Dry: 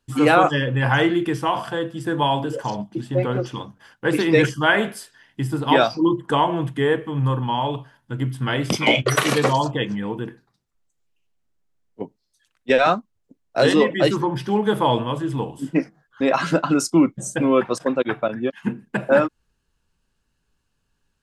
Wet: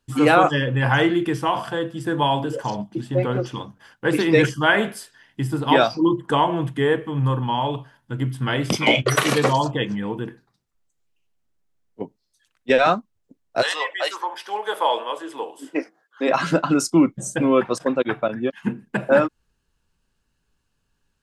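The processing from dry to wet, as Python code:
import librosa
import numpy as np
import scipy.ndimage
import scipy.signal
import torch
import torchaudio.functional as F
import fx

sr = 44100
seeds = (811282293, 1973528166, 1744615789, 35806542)

y = fx.highpass(x, sr, hz=fx.line((13.61, 800.0), (16.27, 280.0)), slope=24, at=(13.61, 16.27), fade=0.02)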